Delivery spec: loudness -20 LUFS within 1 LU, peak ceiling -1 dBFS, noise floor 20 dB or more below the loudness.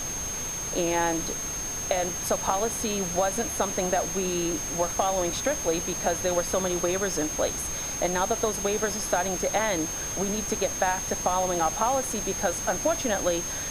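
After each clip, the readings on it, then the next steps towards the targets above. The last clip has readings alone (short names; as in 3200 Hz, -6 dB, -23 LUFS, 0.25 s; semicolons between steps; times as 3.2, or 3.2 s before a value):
steady tone 6400 Hz; tone level -31 dBFS; noise floor -33 dBFS; noise floor target -47 dBFS; loudness -26.5 LUFS; peak -9.5 dBFS; loudness target -20.0 LUFS
-> notch 6400 Hz, Q 30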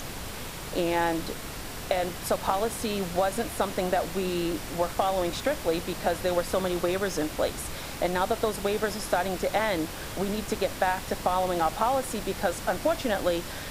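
steady tone none; noise floor -38 dBFS; noise floor target -49 dBFS
-> noise print and reduce 11 dB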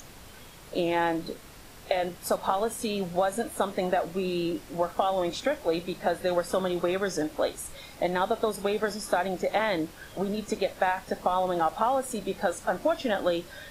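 noise floor -48 dBFS; noise floor target -49 dBFS
-> noise print and reduce 6 dB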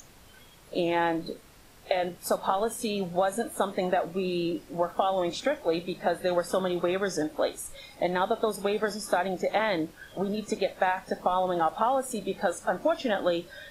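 noise floor -53 dBFS; loudness -28.5 LUFS; peak -10.5 dBFS; loudness target -20.0 LUFS
-> gain +8.5 dB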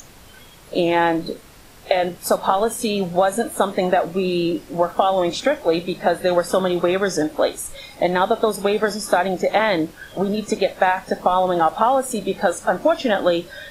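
loudness -20.0 LUFS; peak -2.0 dBFS; noise floor -45 dBFS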